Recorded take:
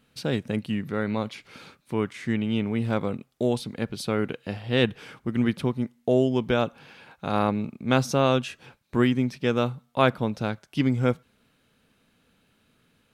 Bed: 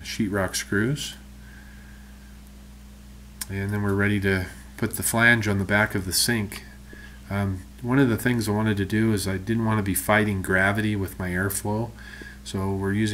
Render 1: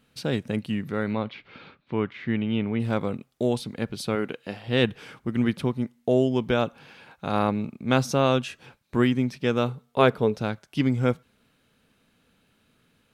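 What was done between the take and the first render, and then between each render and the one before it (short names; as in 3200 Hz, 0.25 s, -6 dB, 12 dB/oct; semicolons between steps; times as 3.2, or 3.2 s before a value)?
1.13–2.8 LPF 3700 Hz 24 dB/oct; 4.15–4.68 bell 83 Hz -11 dB 1.6 oct; 9.68–10.37 bell 430 Hz +14 dB 0.24 oct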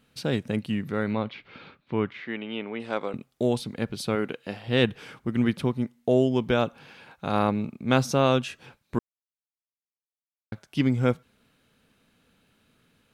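2.2–3.14 BPF 390–7000 Hz; 8.99–10.52 mute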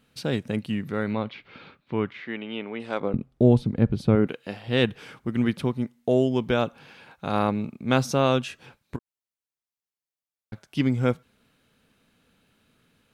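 3–4.27 tilt -4 dB/oct; 8.96–10.53 compressor 8:1, threshold -37 dBFS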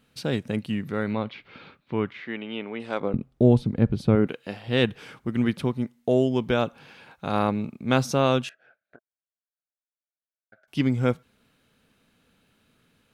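8.49–10.68 double band-pass 990 Hz, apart 1.2 oct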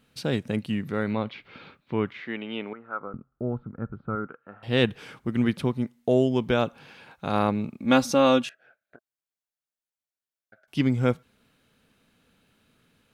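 2.73–4.63 ladder low-pass 1400 Hz, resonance 85%; 7.79–8.46 comb 3.6 ms, depth 70%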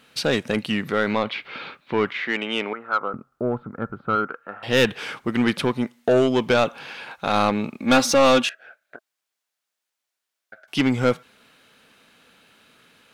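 overdrive pedal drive 19 dB, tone 6700 Hz, clips at -8 dBFS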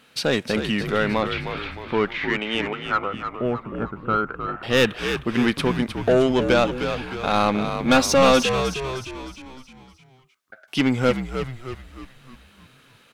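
frequency-shifting echo 0.309 s, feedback 49%, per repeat -65 Hz, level -8 dB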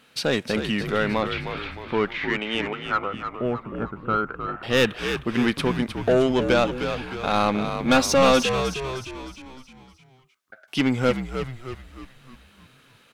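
gain -1.5 dB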